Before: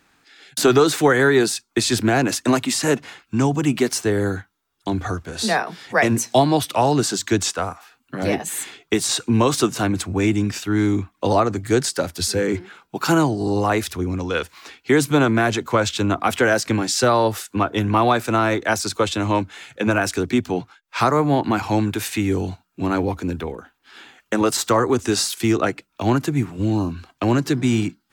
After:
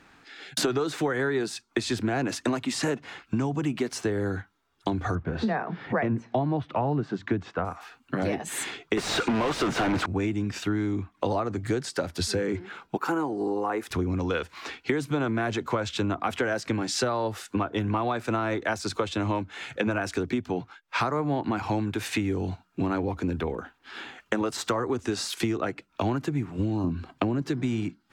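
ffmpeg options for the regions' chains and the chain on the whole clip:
-filter_complex "[0:a]asettb=1/sr,asplit=3[a][b][c];[a]atrim=end=5.154[d];[b]atrim=start=5.15:end=7.65,asetpts=PTS-STARTPTS,afade=t=in:d=0.004:c=qsin,afade=t=out:st=2.496:d=0.004:c=qsin,lowpass=2k,equalizer=f=150:t=o:w=1.6:g=6.5[e];[c]atrim=start=7.646[f];[d][e]acrossfade=d=0.004:c1=hsin:c2=qsin[g];[g][f]acrossfade=d=0.004:c1=qsin:c2=hsin,asettb=1/sr,asplit=3[h][i][j];[h]atrim=end=8.974[k];[i]atrim=start=8.97:end=10.06,asetpts=PTS-STARTPTS,afade=t=in:d=0.004:c=qsin,afade=t=out:st=1.086:d=0.004:c=qsin,asplit=2[l][m];[m]highpass=f=720:p=1,volume=39dB,asoftclip=type=tanh:threshold=-6dB[n];[l][n]amix=inputs=2:normalize=0,lowpass=f=2k:p=1,volume=-6dB,bandreject=f=1.1k:w=22[o];[j]atrim=start=10.056[p];[k][o]acrossfade=d=0.004:c1=hsin:c2=qsin[q];[q][p]acrossfade=d=0.004:c1=qsin:c2=hsin,asettb=1/sr,asplit=3[r][s][t];[r]atrim=end=12.974[u];[s]atrim=start=12.97:end=13.91,asetpts=PTS-STARTPTS,afade=t=in:d=0.004:c=qsin,afade=t=out:st=0.936:d=0.004:c=qsin,highpass=340,equalizer=f=4.2k:t=o:w=2:g=-13,bandreject=f=630:w=5.4[v];[t]atrim=start=13.906[w];[u][v]acrossfade=d=0.004:c1=hsin:c2=qsin[x];[x][w]acrossfade=d=0.004:c1=qsin:c2=hsin,asettb=1/sr,asplit=3[y][z][aa];[y]atrim=end=26.844[ab];[z]atrim=start=26.84:end=27.42,asetpts=PTS-STARTPTS,afade=t=in:d=0.004:c=qsin,afade=t=out:st=0.576:d=0.004:c=qsin,equalizer=f=200:t=o:w=2.8:g=8.5,bandreject=f=6.1k:w=13,acompressor=threshold=-12dB:ratio=6:attack=3.2:release=140:knee=1:detection=peak[ac];[aa]atrim=start=27.416[ad];[ab][ac]acrossfade=d=0.004:c1=hsin:c2=qsin[ae];[ae][ad]acrossfade=d=0.004:c1=qsin:c2=hsin,aemphasis=mode=reproduction:type=50kf,acompressor=threshold=-30dB:ratio=6,volume=5dB"

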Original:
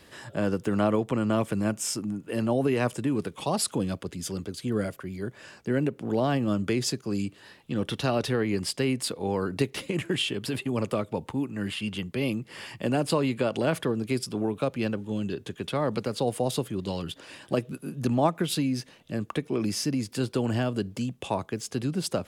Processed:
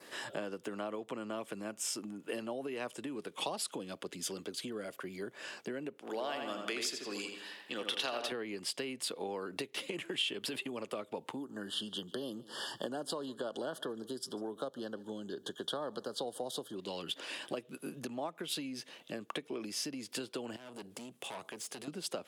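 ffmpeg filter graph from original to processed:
-filter_complex "[0:a]asettb=1/sr,asplit=3[a][b][c];[a]atrim=end=5.984[d];[b]atrim=start=5.98:end=8.32,asetpts=PTS-STARTPTS,afade=t=in:d=0.004:c=qsin,afade=t=out:st=2.336:d=0.004:c=qsin,highpass=f=840:p=1,asplit=2[e][f];[f]adelay=83,lowpass=f=3.8k:p=1,volume=-5dB,asplit=2[g][h];[h]adelay=83,lowpass=f=3.8k:p=1,volume=0.52,asplit=2[i][j];[j]adelay=83,lowpass=f=3.8k:p=1,volume=0.52,asplit=2[k][l];[l]adelay=83,lowpass=f=3.8k:p=1,volume=0.52,asplit=2[m][n];[n]adelay=83,lowpass=f=3.8k:p=1,volume=0.52,asplit=2[o][p];[p]adelay=83,lowpass=f=3.8k:p=1,volume=0.52,asplit=2[q][r];[r]adelay=83,lowpass=f=3.8k:p=1,volume=0.52[s];[e][g][i][k][m][o][q][s]amix=inputs=8:normalize=0,atrim=end_sample=103194[t];[c]atrim=start=8.316[u];[d][t]acrossfade=d=0.004:c1=hsin:c2=qsin[v];[v][u]acrossfade=d=0.004:c1=qsin:c2=hsin,asettb=1/sr,asplit=3[w][x][y];[w]atrim=end=11.364[z];[x]atrim=start=11.36:end=16.76,asetpts=PTS-STARTPTS,afade=t=in:d=0.004:c=qsin,afade=t=out:st=5.396:d=0.004:c=qsin,asuperstop=centerf=2300:order=12:qfactor=1.9,aecho=1:1:146:0.0668,atrim=end_sample=238140[aa];[y]atrim=start=16.756[ab];[z][aa]acrossfade=d=0.004:c1=hsin:c2=qsin[ac];[ac][ab]acrossfade=d=0.004:c1=qsin:c2=hsin,asettb=1/sr,asplit=3[ad][ae][af];[ad]atrim=end=20.564[ag];[ae]atrim=start=20.56:end=21.88,asetpts=PTS-STARTPTS,afade=t=in:d=0.004:c=qsin,afade=t=out:st=1.316:d=0.004:c=qsin,equalizer=f=9.7k:t=o:w=0.67:g=8,aeval=exprs='(tanh(39.8*val(0)+0.3)-tanh(0.3))/39.8':c=same,acompressor=threshold=-42dB:ratio=4:attack=3.2:release=140:knee=1:detection=peak[ah];[af]atrim=start=21.876[ai];[ag][ah]acrossfade=d=0.004:c1=hsin:c2=qsin[aj];[aj][ai]acrossfade=d=0.004:c1=qsin:c2=hsin,acompressor=threshold=-35dB:ratio=10,adynamicequalizer=threshold=0.00141:dfrequency=3200:dqfactor=2.2:tfrequency=3200:tqfactor=2.2:attack=5:release=100:ratio=0.375:range=2.5:mode=boostabove:tftype=bell,highpass=310,volume=1.5dB"

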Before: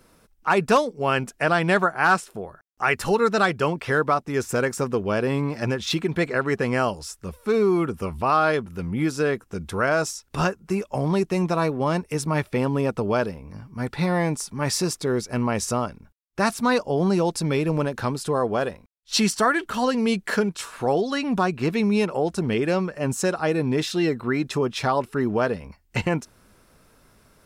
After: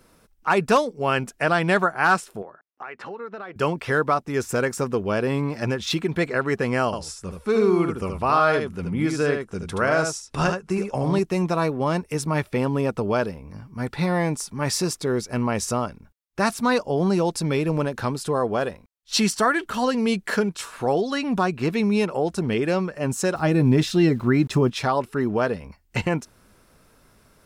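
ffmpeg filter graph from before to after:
-filter_complex "[0:a]asettb=1/sr,asplit=3[a][b][c];[a]atrim=end=2.424[d];[b]atrim=start=2.42:end=3.56,asetpts=PTS-STARTPTS,afade=t=in:d=0.004:c=qsin,afade=t=out:st=1.136:d=0.004:c=qsin,highpass=260,lowpass=2.2k,acompressor=threshold=-33dB:ratio=5:attack=3.2:release=140:knee=1:detection=peak[e];[c]atrim=start=3.556[f];[d][e]acrossfade=d=0.004:c1=hsin:c2=qsin[g];[g][f]acrossfade=d=0.004:c1=qsin:c2=hsin,asettb=1/sr,asplit=3[h][i][j];[h]atrim=end=6.854[k];[i]atrim=start=6.85:end=11.19,asetpts=PTS-STARTPTS,afade=t=in:d=0.004:c=qsin,afade=t=out:st=4.336:d=0.004:c=qsin,lowpass=f=11k:w=0.5412,lowpass=f=11k:w=1.3066,aecho=1:1:75:0.531,atrim=end_sample=191394[l];[j]atrim=start=11.186[m];[k][l]acrossfade=d=0.004:c1=hsin:c2=qsin[n];[n][m]acrossfade=d=0.004:c1=qsin:c2=hsin,asettb=1/sr,asplit=3[o][p][q];[o]atrim=end=23.354[r];[p]atrim=start=23.35:end=24.7,asetpts=PTS-STARTPTS,afade=t=in:d=0.004:c=qsin,afade=t=out:st=1.346:d=0.004:c=qsin,aeval=exprs='val(0)*gte(abs(val(0)),0.00447)':c=same,lowshelf=f=270:g=11,bandreject=f=460:w=9.1[s];[q]atrim=start=24.696[t];[r][s]acrossfade=d=0.004:c1=hsin:c2=qsin[u];[u][t]acrossfade=d=0.004:c1=qsin:c2=hsin"

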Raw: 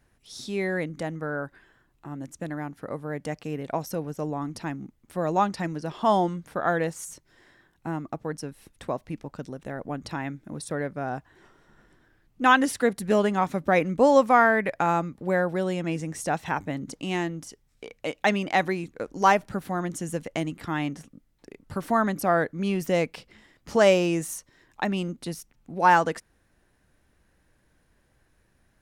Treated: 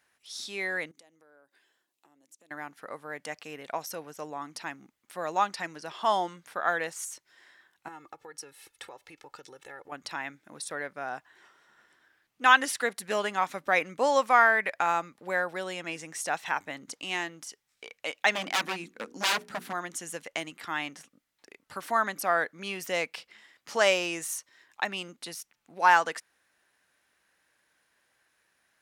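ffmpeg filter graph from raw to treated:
-filter_complex "[0:a]asettb=1/sr,asplit=3[a][b][c];[a]atrim=end=0.914[d];[b]atrim=start=0.91:end=2.51,asetpts=PTS-STARTPTS,afade=t=in:d=0.004:c=qsin,afade=t=out:st=1.596:d=0.004:c=qsin,highpass=290,equalizer=f=1.4k:t=o:w=1.9:g=-15,acompressor=threshold=-52dB:ratio=4:attack=3.2:release=140:knee=1:detection=peak[e];[c]atrim=start=2.506[f];[d][e]acrossfade=d=0.004:c1=hsin:c2=qsin[g];[g][f]acrossfade=d=0.004:c1=qsin:c2=hsin,asettb=1/sr,asplit=3[h][i][j];[h]atrim=end=7.884[k];[i]atrim=start=7.88:end=9.92,asetpts=PTS-STARTPTS,afade=t=in:d=0.004:c=qsin,afade=t=out:st=2.036:d=0.004:c=qsin,aecho=1:1:2.3:0.83,atrim=end_sample=89964,acompressor=threshold=-36dB:ratio=5:attack=3.2:release=140:knee=1:detection=peak[l];[j]atrim=start=9.916[m];[k][l]acrossfade=d=0.004:c1=hsin:c2=qsin[n];[n][m]acrossfade=d=0.004:c1=qsin:c2=hsin,asettb=1/sr,asplit=3[o][p][q];[o]atrim=end=18.354[r];[p]atrim=start=18.35:end=19.73,asetpts=PTS-STARTPTS,afade=t=in:d=0.004:c=qsin,afade=t=out:st=1.376:d=0.004:c=qsin,equalizer=f=230:t=o:w=0.66:g=15,bandreject=f=60:t=h:w=6,bandreject=f=120:t=h:w=6,bandreject=f=180:t=h:w=6,bandreject=f=240:t=h:w=6,bandreject=f=300:t=h:w=6,bandreject=f=360:t=h:w=6,bandreject=f=420:t=h:w=6,bandreject=f=480:t=h:w=6,aeval=exprs='0.1*(abs(mod(val(0)/0.1+3,4)-2)-1)':c=same[s];[q]atrim=start=19.726[t];[r][s]acrossfade=d=0.004:c1=hsin:c2=qsin[u];[u][t]acrossfade=d=0.004:c1=qsin:c2=hsin,highpass=f=1.4k:p=1,equalizer=f=1.9k:w=0.33:g=3.5"

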